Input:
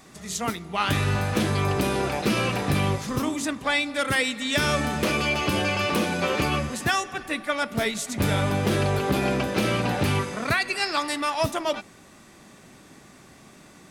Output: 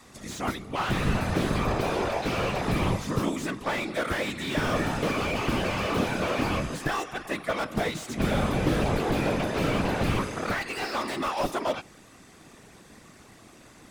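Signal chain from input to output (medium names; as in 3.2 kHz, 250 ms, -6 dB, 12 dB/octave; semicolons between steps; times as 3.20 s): 1.64–2.63 s: fifteen-band graphic EQ 250 Hz -11 dB, 630 Hz +4 dB, 10 kHz -7 dB; whisper effect; slew-rate limiter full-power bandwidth 80 Hz; trim -1.5 dB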